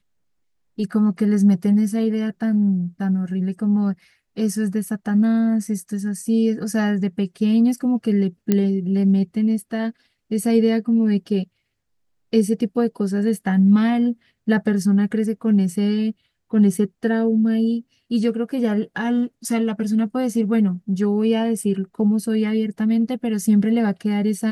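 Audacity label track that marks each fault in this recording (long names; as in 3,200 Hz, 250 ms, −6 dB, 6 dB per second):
8.520000	8.520000	click −6 dBFS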